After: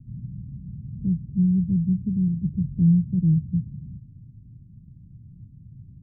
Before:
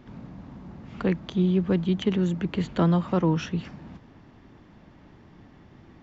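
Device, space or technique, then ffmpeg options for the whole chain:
the neighbour's flat through the wall: -filter_complex "[0:a]lowpass=f=170:w=0.5412,lowpass=f=170:w=1.3066,equalizer=f=120:t=o:w=0.85:g=7.5,asettb=1/sr,asplit=3[s0][s1][s2];[s0]atrim=end=2.264[s3];[s1]atrim=start=2.26:end=2.82,asetpts=PTS-STARTPTS,afade=t=in:d=0.004:c=qsin,afade=t=out:st=0.556:d=0.004:c=qsin,asplit=2[s4][s5];[s5]adelay=20,volume=0.251[s6];[s4][s6]amix=inputs=2:normalize=0,atrim=end_sample=24696[s7];[s2]atrim=start=2.816[s8];[s3][s7]acrossfade=d=0.004:c1=hsin:c2=qsin[s9];[s9][s8]acrossfade=d=0.004:c1=qsin:c2=hsin,volume=1.78"

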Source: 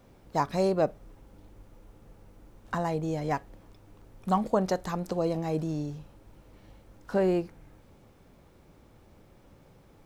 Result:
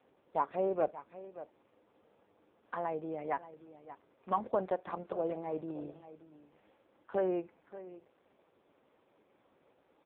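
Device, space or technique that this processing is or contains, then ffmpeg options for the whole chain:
satellite phone: -filter_complex "[0:a]asettb=1/sr,asplit=3[s0][s1][s2];[s0]atrim=end=3.034[s3];[s1]atrim=start=3.03:end=4.75,asetpts=PTS-STARTPTS,afade=t=in:d=0.004:c=qsin,afade=t=out:st=1.716:d=0.004:c=qsin,equalizer=f=7600:w=6:g=-5.5[s4];[s2]atrim=start=4.746[s5];[s3][s4]acrossfade=d=0.004:c1=hsin:c2=qsin[s6];[s6][s5]acrossfade=d=0.004:c1=qsin:c2=hsin,highpass=350,lowpass=3200,aecho=1:1:579:0.178,volume=0.668" -ar 8000 -c:a libopencore_amrnb -b:a 5150

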